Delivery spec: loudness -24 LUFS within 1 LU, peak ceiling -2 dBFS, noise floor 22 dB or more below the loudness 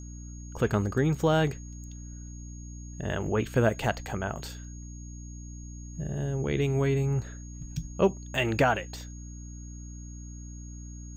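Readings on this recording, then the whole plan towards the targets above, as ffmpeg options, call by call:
hum 60 Hz; harmonics up to 300 Hz; hum level -39 dBFS; steady tone 6600 Hz; tone level -50 dBFS; loudness -28.5 LUFS; peak -11.5 dBFS; loudness target -24.0 LUFS
-> -af "bandreject=f=60:t=h:w=4,bandreject=f=120:t=h:w=4,bandreject=f=180:t=h:w=4,bandreject=f=240:t=h:w=4,bandreject=f=300:t=h:w=4"
-af "bandreject=f=6.6k:w=30"
-af "volume=4.5dB"

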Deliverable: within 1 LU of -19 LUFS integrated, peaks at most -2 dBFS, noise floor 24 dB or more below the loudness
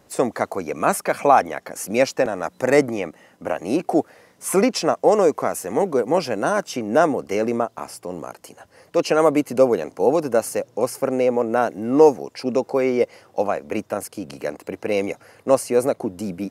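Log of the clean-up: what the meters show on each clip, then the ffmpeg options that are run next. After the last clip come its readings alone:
loudness -21.0 LUFS; peak -2.0 dBFS; loudness target -19.0 LUFS
-> -af "volume=2dB,alimiter=limit=-2dB:level=0:latency=1"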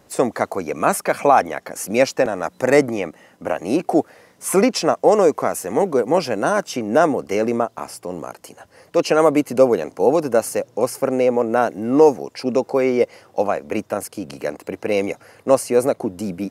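loudness -19.5 LUFS; peak -2.0 dBFS; noise floor -55 dBFS

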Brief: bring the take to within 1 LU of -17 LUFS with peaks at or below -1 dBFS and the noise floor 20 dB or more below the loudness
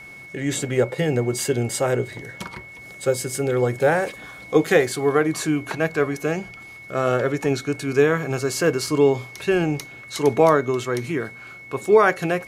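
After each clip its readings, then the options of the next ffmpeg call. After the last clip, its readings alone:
steady tone 2200 Hz; tone level -39 dBFS; loudness -21.5 LUFS; peak -3.5 dBFS; loudness target -17.0 LUFS
-> -af "bandreject=f=2.2k:w=30"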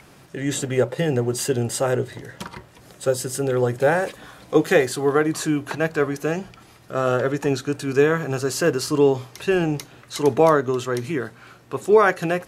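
steady tone none; loudness -21.5 LUFS; peak -3.5 dBFS; loudness target -17.0 LUFS
-> -af "volume=4.5dB,alimiter=limit=-1dB:level=0:latency=1"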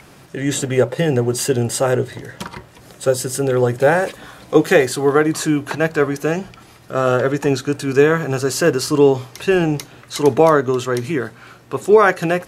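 loudness -17.5 LUFS; peak -1.0 dBFS; noise floor -45 dBFS

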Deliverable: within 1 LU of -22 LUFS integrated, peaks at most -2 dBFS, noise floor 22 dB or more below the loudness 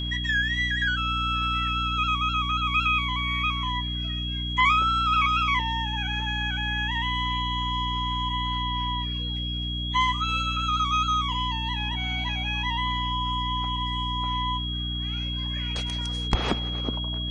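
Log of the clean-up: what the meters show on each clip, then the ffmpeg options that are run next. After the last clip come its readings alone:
hum 60 Hz; harmonics up to 300 Hz; hum level -29 dBFS; steady tone 3300 Hz; tone level -31 dBFS; loudness -25.5 LUFS; peak -8.0 dBFS; loudness target -22.0 LUFS
-> -af "bandreject=f=60:t=h:w=6,bandreject=f=120:t=h:w=6,bandreject=f=180:t=h:w=6,bandreject=f=240:t=h:w=6,bandreject=f=300:t=h:w=6"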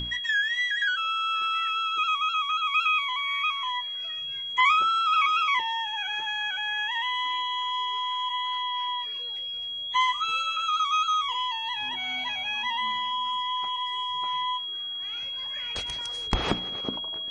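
hum none; steady tone 3300 Hz; tone level -31 dBFS
-> -af "bandreject=f=3.3k:w=30"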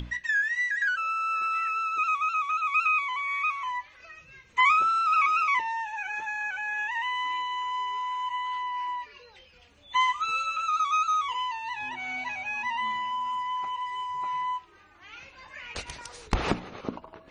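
steady tone none; loudness -27.5 LUFS; peak -10.0 dBFS; loudness target -22.0 LUFS
-> -af "volume=5.5dB"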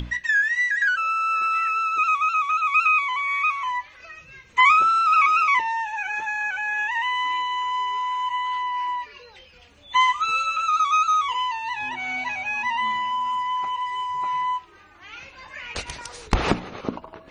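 loudness -22.0 LUFS; peak -4.5 dBFS; noise floor -50 dBFS

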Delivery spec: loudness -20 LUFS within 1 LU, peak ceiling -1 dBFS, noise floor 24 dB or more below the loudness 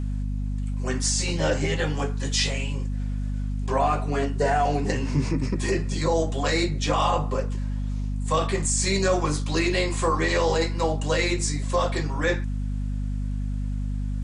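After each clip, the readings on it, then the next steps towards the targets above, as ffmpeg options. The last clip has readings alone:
hum 50 Hz; harmonics up to 250 Hz; hum level -25 dBFS; loudness -25.5 LUFS; peak -10.5 dBFS; loudness target -20.0 LUFS
-> -af "bandreject=f=50:t=h:w=6,bandreject=f=100:t=h:w=6,bandreject=f=150:t=h:w=6,bandreject=f=200:t=h:w=6,bandreject=f=250:t=h:w=6"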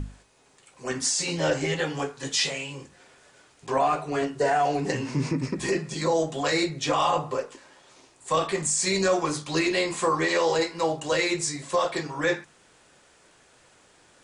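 hum none; loudness -26.0 LUFS; peak -12.5 dBFS; loudness target -20.0 LUFS
-> -af "volume=6dB"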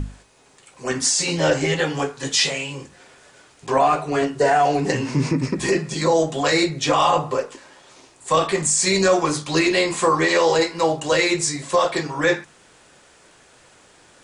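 loudness -20.0 LUFS; peak -6.5 dBFS; noise floor -53 dBFS

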